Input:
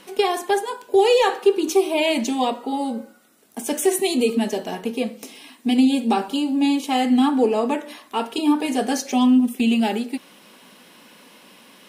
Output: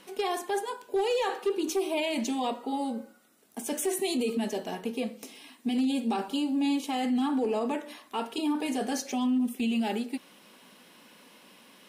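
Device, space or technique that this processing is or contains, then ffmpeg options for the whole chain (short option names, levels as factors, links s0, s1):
clipper into limiter: -af "asoftclip=type=hard:threshold=0.316,alimiter=limit=0.178:level=0:latency=1:release=12,volume=0.473"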